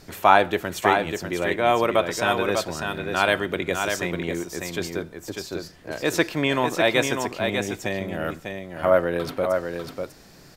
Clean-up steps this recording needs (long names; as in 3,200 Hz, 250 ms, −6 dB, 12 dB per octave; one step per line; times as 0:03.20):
downward expander −34 dBFS, range −21 dB
echo removal 597 ms −5.5 dB